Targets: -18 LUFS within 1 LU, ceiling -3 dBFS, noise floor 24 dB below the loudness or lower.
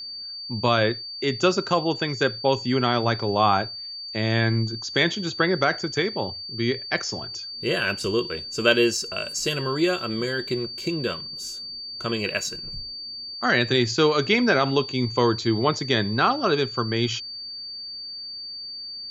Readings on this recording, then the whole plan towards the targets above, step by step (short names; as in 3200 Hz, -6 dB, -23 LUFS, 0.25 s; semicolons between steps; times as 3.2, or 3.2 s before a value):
steady tone 4600 Hz; tone level -33 dBFS; loudness -24.0 LUFS; peak -5.0 dBFS; loudness target -18.0 LUFS
-> notch 4600 Hz, Q 30; gain +6 dB; limiter -3 dBFS